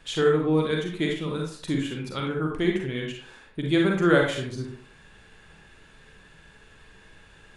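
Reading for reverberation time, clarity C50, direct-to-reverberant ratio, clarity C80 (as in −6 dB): 0.50 s, 2.5 dB, −0.5 dB, 8.0 dB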